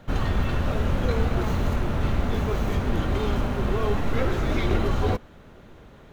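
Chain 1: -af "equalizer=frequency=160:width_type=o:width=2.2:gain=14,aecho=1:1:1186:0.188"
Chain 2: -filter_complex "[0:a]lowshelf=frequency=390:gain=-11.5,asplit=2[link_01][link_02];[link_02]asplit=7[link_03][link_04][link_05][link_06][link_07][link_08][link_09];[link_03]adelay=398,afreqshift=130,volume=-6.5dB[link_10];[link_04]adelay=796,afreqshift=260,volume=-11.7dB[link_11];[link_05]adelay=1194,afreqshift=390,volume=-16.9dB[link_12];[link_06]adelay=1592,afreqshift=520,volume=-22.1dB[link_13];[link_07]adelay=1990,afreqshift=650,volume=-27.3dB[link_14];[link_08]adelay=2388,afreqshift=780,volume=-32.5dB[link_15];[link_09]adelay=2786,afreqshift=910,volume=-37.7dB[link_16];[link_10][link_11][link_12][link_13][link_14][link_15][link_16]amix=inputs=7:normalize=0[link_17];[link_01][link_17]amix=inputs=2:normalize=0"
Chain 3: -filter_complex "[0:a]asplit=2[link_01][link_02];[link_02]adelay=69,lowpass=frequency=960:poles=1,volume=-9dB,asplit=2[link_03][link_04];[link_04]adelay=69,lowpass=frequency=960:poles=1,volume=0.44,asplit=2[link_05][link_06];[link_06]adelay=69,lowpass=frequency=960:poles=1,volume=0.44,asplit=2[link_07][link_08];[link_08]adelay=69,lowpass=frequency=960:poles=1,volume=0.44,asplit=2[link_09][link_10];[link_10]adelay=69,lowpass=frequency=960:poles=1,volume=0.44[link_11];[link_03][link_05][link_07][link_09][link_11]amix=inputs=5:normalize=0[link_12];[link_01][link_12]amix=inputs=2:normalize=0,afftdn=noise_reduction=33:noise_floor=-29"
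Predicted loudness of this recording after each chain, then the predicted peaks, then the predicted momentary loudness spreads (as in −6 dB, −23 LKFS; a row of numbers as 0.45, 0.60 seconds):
−17.5, −31.5, −26.5 LKFS; −2.5, −16.5, −8.0 dBFS; 9, 5, 2 LU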